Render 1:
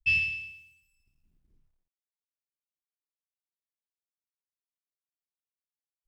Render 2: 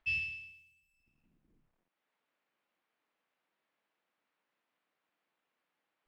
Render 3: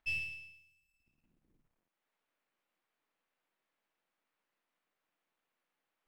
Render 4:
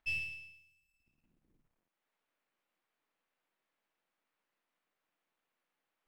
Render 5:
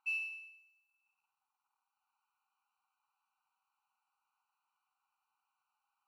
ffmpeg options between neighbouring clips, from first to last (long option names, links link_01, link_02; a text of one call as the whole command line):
ffmpeg -i in.wav -filter_complex "[0:a]bandreject=frequency=390:width=12,acrossover=split=170|2900[link_01][link_02][link_03];[link_02]acompressor=mode=upward:threshold=-53dB:ratio=2.5[link_04];[link_01][link_04][link_03]amix=inputs=3:normalize=0,volume=-9dB" out.wav
ffmpeg -i in.wav -af "aeval=exprs='if(lt(val(0),0),0.447*val(0),val(0))':channel_layout=same" out.wav
ffmpeg -i in.wav -af anull out.wav
ffmpeg -i in.wav -af "equalizer=frequency=500:width_type=o:width=3:gain=12.5,afftfilt=real='re*eq(mod(floor(b*sr/1024/770),2),1)':imag='im*eq(mod(floor(b*sr/1024/770),2),1)':win_size=1024:overlap=0.75,volume=-2.5dB" out.wav